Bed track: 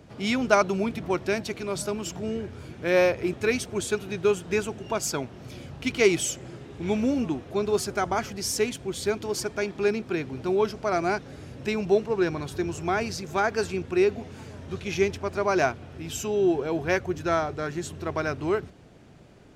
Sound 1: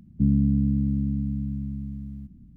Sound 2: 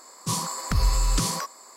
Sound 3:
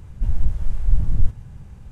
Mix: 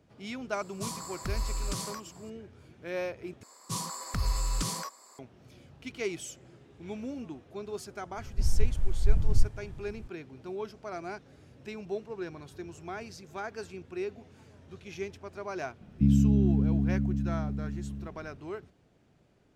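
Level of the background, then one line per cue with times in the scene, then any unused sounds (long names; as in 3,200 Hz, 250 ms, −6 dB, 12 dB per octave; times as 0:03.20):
bed track −13.5 dB
0:00.54: mix in 2 −10.5 dB
0:03.43: overwrite with 2 −7.5 dB
0:08.17: mix in 3 −5.5 dB
0:15.81: mix in 1 −1.5 dB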